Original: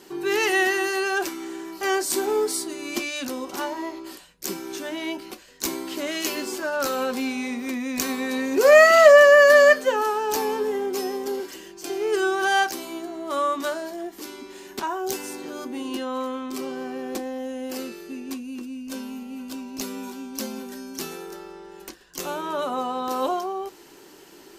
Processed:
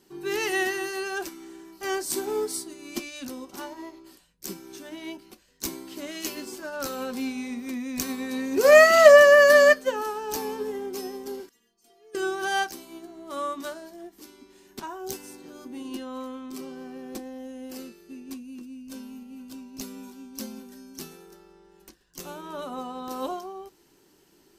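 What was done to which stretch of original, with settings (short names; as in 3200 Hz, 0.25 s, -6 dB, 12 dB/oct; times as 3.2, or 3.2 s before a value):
11.49–12.15 metallic resonator 230 Hz, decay 0.25 s, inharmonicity 0.002
whole clip: tone controls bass +10 dB, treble +4 dB; notch 7000 Hz, Q 23; upward expander 1.5:1, over -37 dBFS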